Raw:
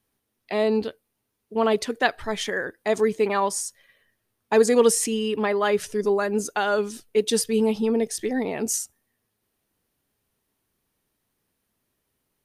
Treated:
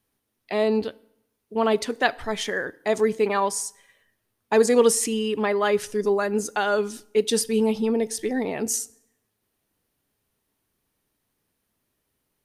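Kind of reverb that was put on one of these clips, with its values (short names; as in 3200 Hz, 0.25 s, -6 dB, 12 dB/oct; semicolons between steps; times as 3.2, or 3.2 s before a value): FDN reverb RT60 0.78 s, low-frequency decay 1.05×, high-frequency decay 0.8×, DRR 19.5 dB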